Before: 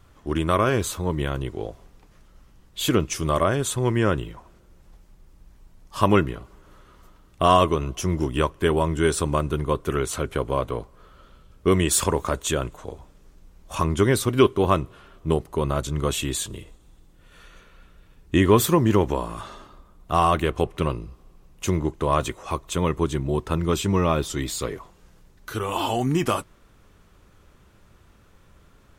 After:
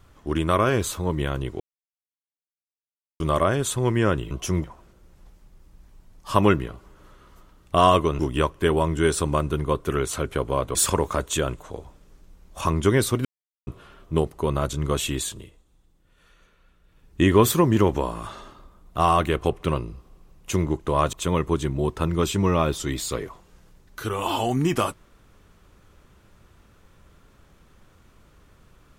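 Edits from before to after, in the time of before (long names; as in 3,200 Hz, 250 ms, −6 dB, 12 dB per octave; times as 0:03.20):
0:01.60–0:03.20: silence
0:07.86–0:08.19: move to 0:04.31
0:10.75–0:11.89: remove
0:14.39–0:14.81: silence
0:16.29–0:18.35: duck −9 dB, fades 0.38 s
0:22.27–0:22.63: remove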